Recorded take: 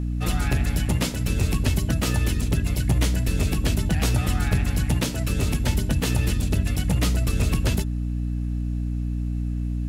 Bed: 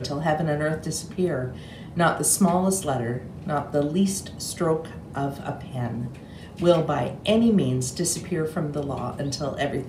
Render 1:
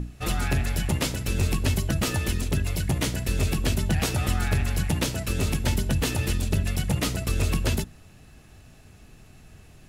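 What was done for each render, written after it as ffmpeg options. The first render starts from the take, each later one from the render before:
ffmpeg -i in.wav -af "bandreject=frequency=60:width_type=h:width=6,bandreject=frequency=120:width_type=h:width=6,bandreject=frequency=180:width_type=h:width=6,bandreject=frequency=240:width_type=h:width=6,bandreject=frequency=300:width_type=h:width=6" out.wav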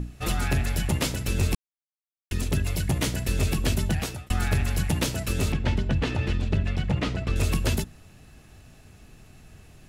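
ffmpeg -i in.wav -filter_complex "[0:a]asettb=1/sr,asplit=3[link_01][link_02][link_03];[link_01]atrim=end=5.524[link_04];[link_02]atrim=start=5.52:end=7.36,asetpts=PTS-STARTPTS,afade=type=in:duration=0.004:curve=qsin,afade=type=out:start_time=1.836:duration=0.004:curve=qsin,lowpass=3200[link_05];[link_03]atrim=start=7.356[link_06];[link_04][link_05]acrossfade=duration=0.004:curve1=hsin:curve2=qsin[link_07];[link_07][link_06]acrossfade=duration=0.004:curve1=qsin:curve2=hsin,asplit=4[link_08][link_09][link_10][link_11];[link_08]atrim=end=1.55,asetpts=PTS-STARTPTS,afade=type=out:start_time=1.546:duration=0.004:curve=hsin[link_12];[link_09]atrim=start=1.55:end=2.31,asetpts=PTS-STARTPTS,volume=0[link_13];[link_10]atrim=start=2.31:end=4.3,asetpts=PTS-STARTPTS,afade=type=in:duration=0.004:curve=hsin,afade=type=out:start_time=1.54:duration=0.45[link_14];[link_11]atrim=start=4.3,asetpts=PTS-STARTPTS,afade=type=in:duration=0.004:curve=hsin[link_15];[link_12][link_13][link_14][link_15]concat=n=4:v=0:a=1" out.wav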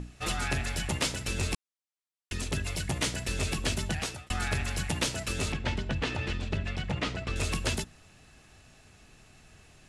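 ffmpeg -i in.wav -af "lowpass=frequency=10000:width=0.5412,lowpass=frequency=10000:width=1.3066,lowshelf=frequency=480:gain=-8.5" out.wav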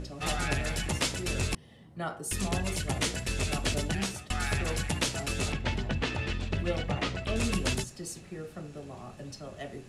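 ffmpeg -i in.wav -i bed.wav -filter_complex "[1:a]volume=-15dB[link_01];[0:a][link_01]amix=inputs=2:normalize=0" out.wav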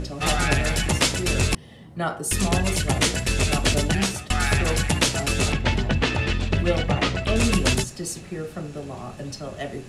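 ffmpeg -i in.wav -af "volume=9dB" out.wav

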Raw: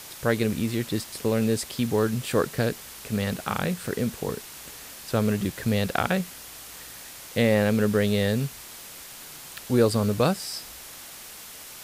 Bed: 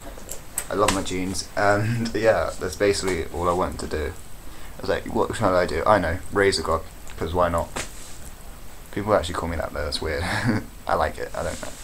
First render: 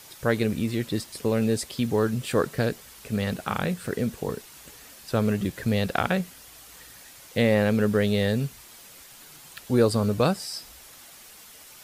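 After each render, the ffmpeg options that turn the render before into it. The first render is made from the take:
ffmpeg -i in.wav -af "afftdn=noise_reduction=7:noise_floor=-43" out.wav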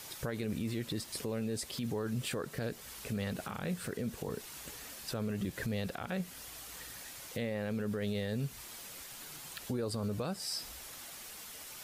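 ffmpeg -i in.wav -af "acompressor=threshold=-31dB:ratio=3,alimiter=level_in=3.5dB:limit=-24dB:level=0:latency=1:release=39,volume=-3.5dB" out.wav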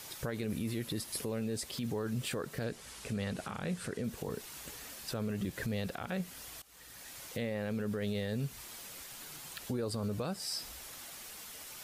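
ffmpeg -i in.wav -filter_complex "[0:a]asettb=1/sr,asplit=3[link_01][link_02][link_03];[link_01]atrim=end=0.504[link_04];[link_02]atrim=start=0.5:end=1.29,asetpts=PTS-STARTPTS,afade=type=in:duration=0.004:curve=qsin,afade=type=out:start_time=0.786:duration=0.004:curve=qsin,equalizer=frequency=11000:width=5.5:gain=11[link_05];[link_03]atrim=start=1.286[link_06];[link_04][link_05]acrossfade=duration=0.004:curve1=hsin:curve2=qsin[link_07];[link_07][link_06]acrossfade=duration=0.004:curve1=qsin:curve2=hsin,asettb=1/sr,asplit=3[link_08][link_09][link_10];[link_08]atrim=end=2.644[link_11];[link_09]atrim=start=2.64:end=4.04,asetpts=PTS-STARTPTS,afade=type=in:duration=0.004:curve=qsin,afade=type=out:start_time=1.396:duration=0.004:curve=qsin,lowpass=frequency=11000:width=0.5412,lowpass=frequency=11000:width=1.3066[link_12];[link_10]atrim=start=4.036[link_13];[link_11][link_12]acrossfade=duration=0.004:curve1=hsin:curve2=qsin[link_14];[link_14][link_13]acrossfade=duration=0.004:curve1=qsin:curve2=hsin,asplit=2[link_15][link_16];[link_15]atrim=end=6.62,asetpts=PTS-STARTPTS,afade=type=out:start_time=6.616:duration=0.004:curve=hsin:silence=0.1[link_17];[link_16]atrim=start=6.62,asetpts=PTS-STARTPTS,afade=type=in:duration=0.57:silence=0.1[link_18];[link_17][link_18]concat=n=2:v=0:a=1" out.wav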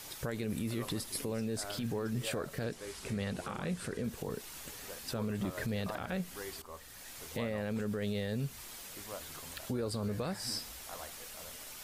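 ffmpeg -i in.wav -i bed.wav -filter_complex "[1:a]volume=-26dB[link_01];[0:a][link_01]amix=inputs=2:normalize=0" out.wav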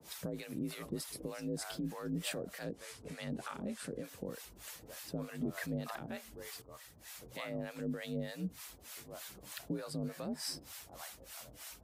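ffmpeg -i in.wav -filter_complex "[0:a]afreqshift=45,acrossover=split=650[link_01][link_02];[link_01]aeval=exprs='val(0)*(1-1/2+1/2*cos(2*PI*3.3*n/s))':channel_layout=same[link_03];[link_02]aeval=exprs='val(0)*(1-1/2-1/2*cos(2*PI*3.3*n/s))':channel_layout=same[link_04];[link_03][link_04]amix=inputs=2:normalize=0" out.wav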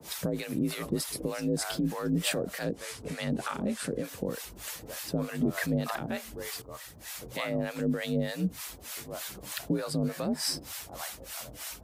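ffmpeg -i in.wav -af "volume=9.5dB" out.wav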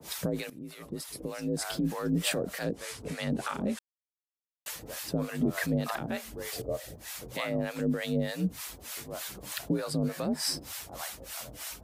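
ffmpeg -i in.wav -filter_complex "[0:a]asettb=1/sr,asplit=3[link_01][link_02][link_03];[link_01]atrim=end=6.524[link_04];[link_02]atrim=start=6.52:end=6.96,asetpts=PTS-STARTPTS,afade=type=in:duration=0.004:curve=qsin,afade=type=out:start_time=0.436:duration=0.004:curve=qsin,lowshelf=frequency=780:width_type=q:width=3:gain=8.5[link_05];[link_03]atrim=start=6.956[link_06];[link_04][link_05]acrossfade=duration=0.004:curve1=hsin:curve2=qsin[link_07];[link_07][link_06]acrossfade=duration=0.004:curve1=qsin:curve2=hsin,asplit=4[link_08][link_09][link_10][link_11];[link_08]atrim=end=0.5,asetpts=PTS-STARTPTS,afade=type=out:start_time=0.496:duration=0.004:curve=hsin:silence=0.11885[link_12];[link_09]atrim=start=0.5:end=3.79,asetpts=PTS-STARTPTS,afade=type=in:duration=1.39:silence=0.11885,afade=type=out:start_time=3.286:duration=0.004:curve=hsin[link_13];[link_10]atrim=start=3.79:end=4.66,asetpts=PTS-STARTPTS,volume=0[link_14];[link_11]atrim=start=4.66,asetpts=PTS-STARTPTS,afade=type=in:duration=0.004:curve=hsin[link_15];[link_12][link_13][link_14][link_15]concat=n=4:v=0:a=1" out.wav

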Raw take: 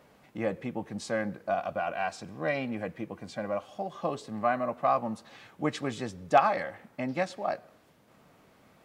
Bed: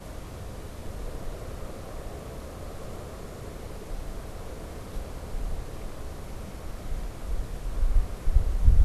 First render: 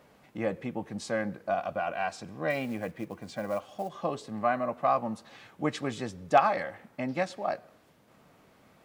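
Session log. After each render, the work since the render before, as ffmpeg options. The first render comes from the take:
ffmpeg -i in.wav -filter_complex "[0:a]asettb=1/sr,asplit=3[link_01][link_02][link_03];[link_01]atrim=end=2.504[link_04];[link_02]atrim=start=2.5:end=3.89,asetpts=PTS-STARTPTS,afade=type=in:duration=0.004:curve=qsin,afade=type=out:start_time=1.386:duration=0.004:curve=qsin,acrusher=bits=6:mode=log:mix=0:aa=0.000001[link_05];[link_03]atrim=start=3.886[link_06];[link_04][link_05]acrossfade=duration=0.004:curve1=hsin:curve2=qsin[link_07];[link_07][link_06]acrossfade=duration=0.004:curve1=qsin:curve2=hsin" out.wav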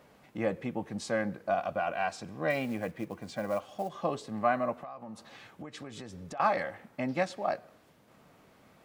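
ffmpeg -i in.wav -filter_complex "[0:a]asettb=1/sr,asplit=3[link_01][link_02][link_03];[link_01]atrim=end=4.724[link_04];[link_02]atrim=start=4.72:end=6.4,asetpts=PTS-STARTPTS,afade=type=in:duration=0.004:curve=qsin,afade=type=out:start_time=1.676:duration=0.004:curve=qsin,acompressor=threshold=-39dB:ratio=12:attack=3.2:release=140:knee=1:detection=peak[link_05];[link_03]atrim=start=6.396[link_06];[link_04][link_05]acrossfade=duration=0.004:curve1=hsin:curve2=qsin[link_07];[link_07][link_06]acrossfade=duration=0.004:curve1=qsin:curve2=hsin" out.wav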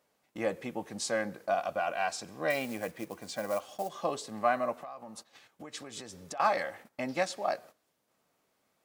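ffmpeg -i in.wav -af "agate=range=-15dB:threshold=-49dB:ratio=16:detection=peak,bass=frequency=250:gain=-8,treble=frequency=4000:gain=9" out.wav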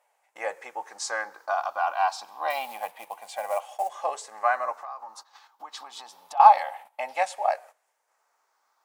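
ffmpeg -i in.wav -af "afftfilt=real='re*pow(10,8/40*sin(2*PI*(0.5*log(max(b,1)*sr/1024/100)/log(2)-(-0.27)*(pts-256)/sr)))':imag='im*pow(10,8/40*sin(2*PI*(0.5*log(max(b,1)*sr/1024/100)/log(2)-(-0.27)*(pts-256)/sr)))':win_size=1024:overlap=0.75,highpass=frequency=860:width_type=q:width=4.9" out.wav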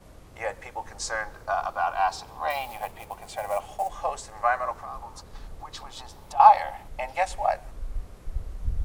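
ffmpeg -i in.wav -i bed.wav -filter_complex "[1:a]volume=-10dB[link_01];[0:a][link_01]amix=inputs=2:normalize=0" out.wav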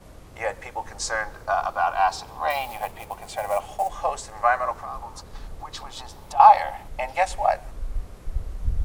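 ffmpeg -i in.wav -af "volume=3.5dB,alimiter=limit=-2dB:level=0:latency=1" out.wav

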